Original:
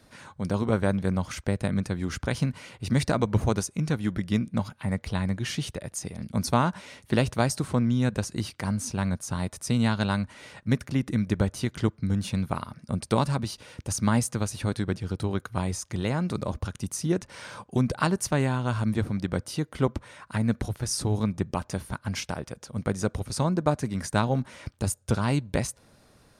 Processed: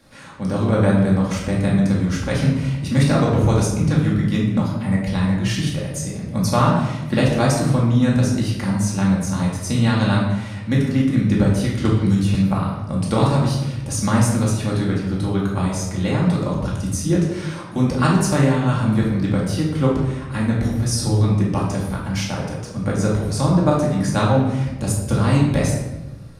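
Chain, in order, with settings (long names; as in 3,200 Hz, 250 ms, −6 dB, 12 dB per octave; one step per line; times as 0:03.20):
rectangular room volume 480 cubic metres, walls mixed, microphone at 2.3 metres
0:11.85–0:12.35: multiband upward and downward compressor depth 100%
level +1 dB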